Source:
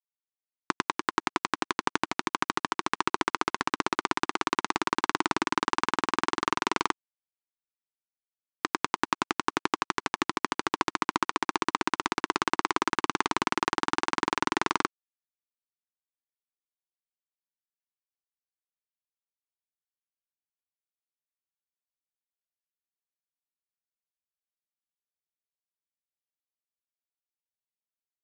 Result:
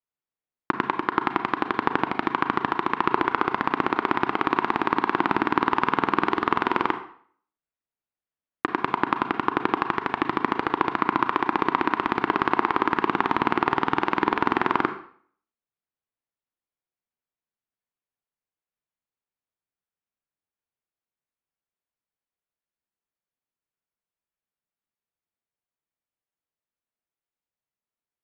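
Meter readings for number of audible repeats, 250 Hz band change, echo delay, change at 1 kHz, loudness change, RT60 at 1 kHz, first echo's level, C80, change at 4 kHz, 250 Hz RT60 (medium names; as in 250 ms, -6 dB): no echo, +7.0 dB, no echo, +5.5 dB, +4.5 dB, 0.55 s, no echo, 13.5 dB, -3.5 dB, 0.50 s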